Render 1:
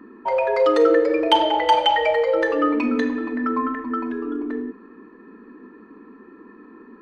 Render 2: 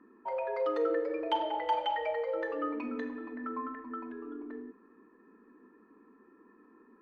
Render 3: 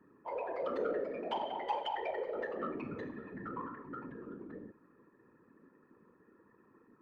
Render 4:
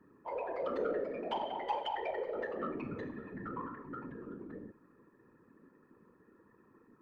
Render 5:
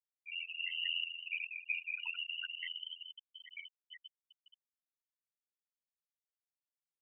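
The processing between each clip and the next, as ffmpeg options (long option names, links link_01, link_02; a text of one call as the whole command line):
ffmpeg -i in.wav -af "lowpass=frequency=1100:poles=1,lowshelf=frequency=460:gain=-9,volume=-9dB" out.wav
ffmpeg -i in.wav -af "afftfilt=real='hypot(re,im)*cos(2*PI*random(0))':imag='hypot(re,im)*sin(2*PI*random(1))':win_size=512:overlap=0.75,asoftclip=type=tanh:threshold=-26dB,volume=1.5dB" out.wav
ffmpeg -i in.wav -af "lowshelf=frequency=110:gain=6" out.wav
ffmpeg -i in.wav -af "lowpass=frequency=2800:width_type=q:width=0.5098,lowpass=frequency=2800:width_type=q:width=0.6013,lowpass=frequency=2800:width_type=q:width=0.9,lowpass=frequency=2800:width_type=q:width=2.563,afreqshift=-3300,afftfilt=real='re*gte(hypot(re,im),0.0631)':imag='im*gte(hypot(re,im),0.0631)':win_size=1024:overlap=0.75,aeval=exprs='val(0)*sin(2*PI*42*n/s)':channel_layout=same,volume=1dB" out.wav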